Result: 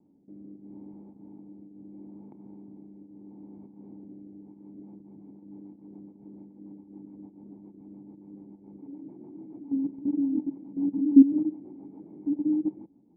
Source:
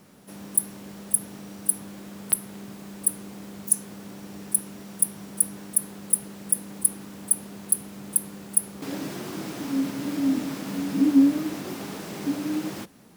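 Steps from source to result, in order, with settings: level quantiser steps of 15 dB; rotary speaker horn 0.75 Hz, later 7 Hz, at 4.31; vocal tract filter u; gain +8 dB

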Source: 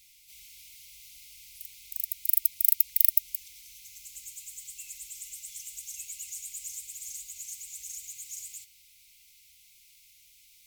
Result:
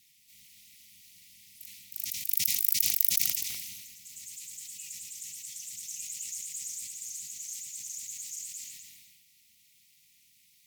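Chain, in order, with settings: ring modulator 150 Hz; dynamic EQ 6000 Hz, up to +7 dB, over -52 dBFS, Q 1.3; on a send: tape echo 0.251 s, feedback 35%, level -10.5 dB, low-pass 4500 Hz; on the sum: sustainer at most 34 dB/s; gain -2 dB

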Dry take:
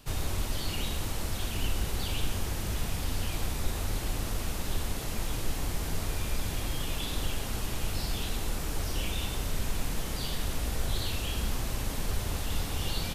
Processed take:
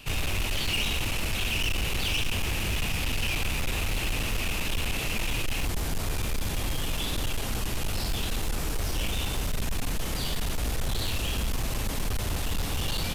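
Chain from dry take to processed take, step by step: bell 2600 Hz +13.5 dB 0.6 oct, from 5.65 s +2 dB; overloaded stage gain 27.5 dB; gain +4 dB

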